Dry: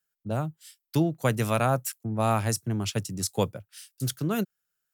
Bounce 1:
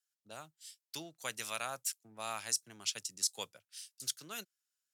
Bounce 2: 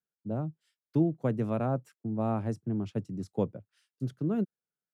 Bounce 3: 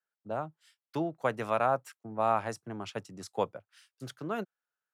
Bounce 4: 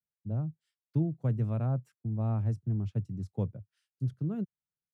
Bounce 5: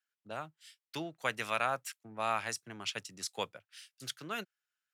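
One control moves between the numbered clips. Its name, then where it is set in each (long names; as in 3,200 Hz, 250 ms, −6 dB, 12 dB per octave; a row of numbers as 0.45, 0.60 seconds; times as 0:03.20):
resonant band-pass, frequency: 5,700, 260, 900, 100, 2,300 Hertz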